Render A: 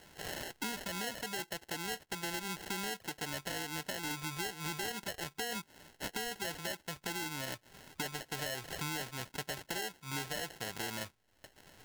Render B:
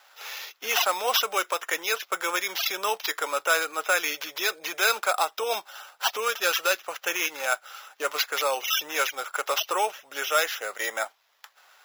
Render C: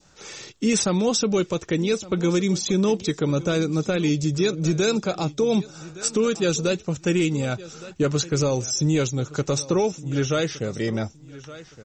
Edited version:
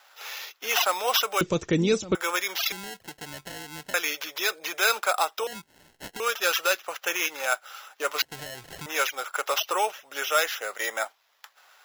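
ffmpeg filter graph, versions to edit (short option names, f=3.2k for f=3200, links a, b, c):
-filter_complex "[0:a]asplit=3[a][b][c];[1:a]asplit=5[d][e][f][g][h];[d]atrim=end=1.412[i];[2:a]atrim=start=1.408:end=2.152[j];[e]atrim=start=2.148:end=2.722[k];[a]atrim=start=2.718:end=3.942[l];[f]atrim=start=3.938:end=5.472[m];[b]atrim=start=5.468:end=6.202[n];[g]atrim=start=6.198:end=8.222[o];[c]atrim=start=8.218:end=8.862[p];[h]atrim=start=8.858[q];[i][j]acrossfade=d=0.004:c1=hsin:c2=hsin[r];[r][k]acrossfade=d=0.004:c1=hsin:c2=hsin[s];[s][l]acrossfade=d=0.004:c1=hsin:c2=hsin[t];[t][m]acrossfade=d=0.004:c1=hsin:c2=hsin[u];[u][n]acrossfade=d=0.004:c1=hsin:c2=hsin[v];[v][o]acrossfade=d=0.004:c1=hsin:c2=hsin[w];[w][p]acrossfade=d=0.004:c1=hsin:c2=hsin[x];[x][q]acrossfade=d=0.004:c1=hsin:c2=hsin"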